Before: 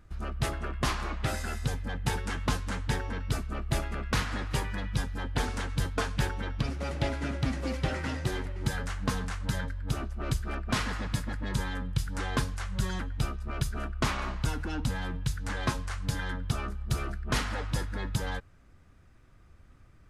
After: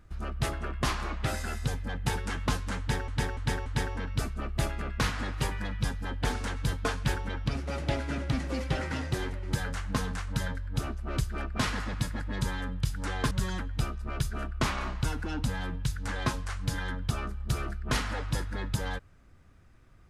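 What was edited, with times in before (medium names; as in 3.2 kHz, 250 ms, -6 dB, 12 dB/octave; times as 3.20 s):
2.79–3.08 s: loop, 4 plays
12.44–12.72 s: delete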